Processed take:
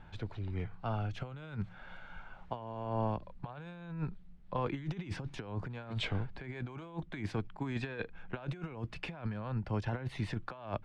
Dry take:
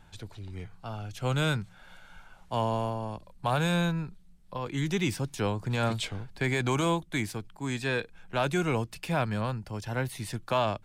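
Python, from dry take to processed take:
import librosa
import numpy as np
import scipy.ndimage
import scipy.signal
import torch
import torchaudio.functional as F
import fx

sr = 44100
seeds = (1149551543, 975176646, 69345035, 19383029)

y = scipy.signal.sosfilt(scipy.signal.butter(2, 2500.0, 'lowpass', fs=sr, output='sos'), x)
y = fx.over_compress(y, sr, threshold_db=-34.0, ratio=-0.5)
y = y * librosa.db_to_amplitude(-2.5)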